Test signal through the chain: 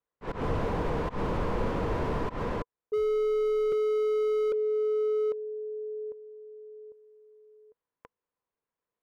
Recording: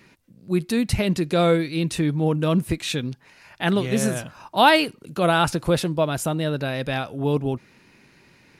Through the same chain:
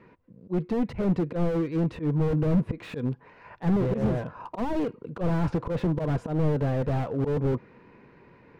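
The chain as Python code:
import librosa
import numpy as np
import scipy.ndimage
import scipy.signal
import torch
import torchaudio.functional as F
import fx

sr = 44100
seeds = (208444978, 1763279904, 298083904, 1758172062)

y = scipy.signal.sosfilt(scipy.signal.butter(2, 1500.0, 'lowpass', fs=sr, output='sos'), x)
y = fx.auto_swell(y, sr, attack_ms=122.0)
y = fx.rider(y, sr, range_db=5, speed_s=2.0)
y = fx.small_body(y, sr, hz=(470.0, 1000.0), ring_ms=35, db=9)
y = fx.slew_limit(y, sr, full_power_hz=23.0)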